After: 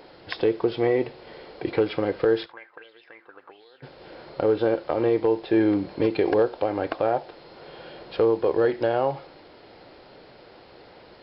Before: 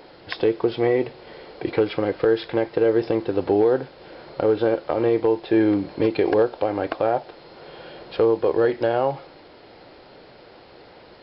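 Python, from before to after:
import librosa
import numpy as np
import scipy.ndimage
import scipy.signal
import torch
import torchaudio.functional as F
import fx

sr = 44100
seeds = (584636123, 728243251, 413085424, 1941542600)

y = fx.auto_wah(x, sr, base_hz=450.0, top_hz=3900.0, q=6.6, full_db=-13.5, direction='up', at=(2.45, 3.82), fade=0.02)
y = y + 10.0 ** (-22.5 / 20.0) * np.pad(y, (int(71 * sr / 1000.0), 0))[:len(y)]
y = y * 10.0 ** (-2.0 / 20.0)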